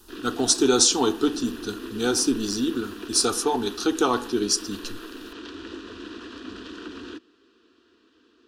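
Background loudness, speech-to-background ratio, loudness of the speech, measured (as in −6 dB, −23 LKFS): −38.0 LKFS, 15.0 dB, −23.0 LKFS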